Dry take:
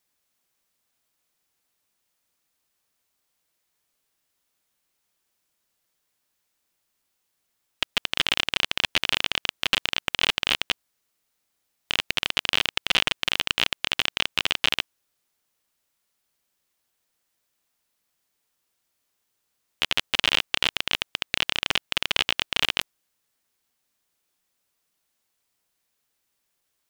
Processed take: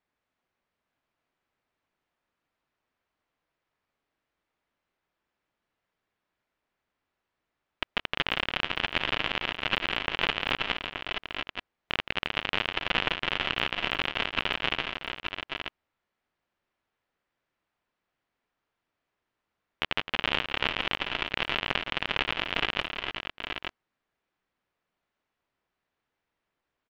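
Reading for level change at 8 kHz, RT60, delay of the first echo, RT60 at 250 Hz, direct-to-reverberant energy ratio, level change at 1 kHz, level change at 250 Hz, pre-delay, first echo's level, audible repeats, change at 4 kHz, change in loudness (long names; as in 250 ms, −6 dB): below −15 dB, no reverb audible, 168 ms, no reverb audible, no reverb audible, +1.0 dB, +1.5 dB, no reverb audible, −10.0 dB, 4, −6.5 dB, −5.5 dB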